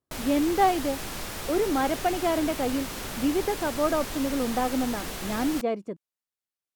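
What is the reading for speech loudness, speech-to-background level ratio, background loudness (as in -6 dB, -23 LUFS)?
-27.5 LUFS, 7.0 dB, -34.5 LUFS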